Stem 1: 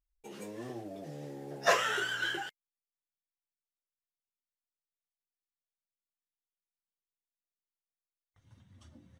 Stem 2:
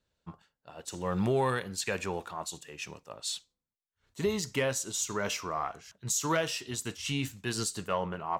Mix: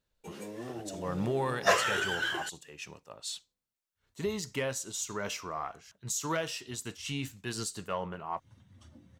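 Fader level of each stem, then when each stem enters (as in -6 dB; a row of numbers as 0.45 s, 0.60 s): +1.5 dB, -3.5 dB; 0.00 s, 0.00 s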